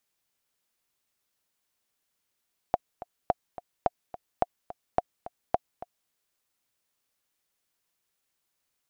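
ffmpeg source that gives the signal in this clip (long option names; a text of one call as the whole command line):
ffmpeg -f lavfi -i "aevalsrc='pow(10,(-9-16*gte(mod(t,2*60/214),60/214))/20)*sin(2*PI*713*mod(t,60/214))*exp(-6.91*mod(t,60/214)/0.03)':duration=3.36:sample_rate=44100" out.wav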